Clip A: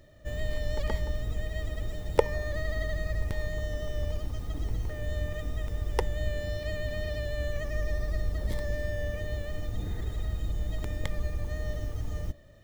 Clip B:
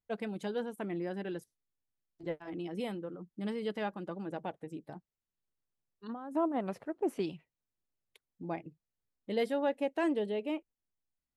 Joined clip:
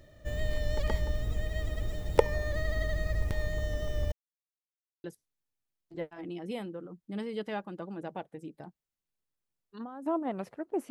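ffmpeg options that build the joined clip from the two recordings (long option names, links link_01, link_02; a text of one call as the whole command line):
ffmpeg -i cue0.wav -i cue1.wav -filter_complex "[0:a]apad=whole_dur=10.9,atrim=end=10.9,asplit=2[link_01][link_02];[link_01]atrim=end=4.12,asetpts=PTS-STARTPTS,afade=type=out:start_time=4.116:duration=0.004:curve=hsin[link_03];[link_02]atrim=start=4.12:end=5.04,asetpts=PTS-STARTPTS,volume=0[link_04];[1:a]atrim=start=1.33:end=7.19,asetpts=PTS-STARTPTS,afade=type=in:duration=0.004:curve=hsin[link_05];[link_03][link_04][link_05]concat=n=3:v=0:a=1" out.wav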